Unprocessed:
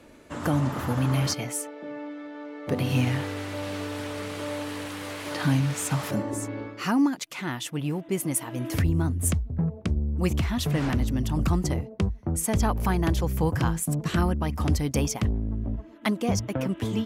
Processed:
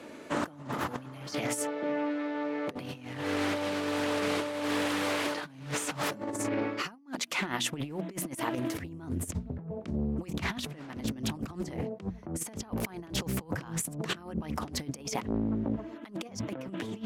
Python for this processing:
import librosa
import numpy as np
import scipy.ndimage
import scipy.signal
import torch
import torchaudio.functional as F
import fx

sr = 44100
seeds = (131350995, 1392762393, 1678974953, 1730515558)

y = scipy.signal.sosfilt(scipy.signal.butter(2, 180.0, 'highpass', fs=sr, output='sos'), x)
y = fx.high_shelf(y, sr, hz=8100.0, db=-5.0)
y = fx.hum_notches(y, sr, base_hz=60, count=4)
y = fx.over_compress(y, sr, threshold_db=-35.0, ratio=-0.5)
y = fx.doppler_dist(y, sr, depth_ms=0.37)
y = y * librosa.db_to_amplitude(1.5)